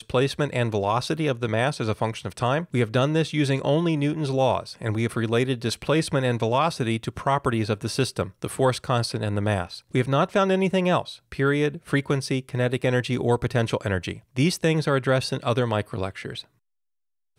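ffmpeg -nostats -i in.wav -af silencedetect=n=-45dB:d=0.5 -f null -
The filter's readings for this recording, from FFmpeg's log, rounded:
silence_start: 16.44
silence_end: 17.39 | silence_duration: 0.94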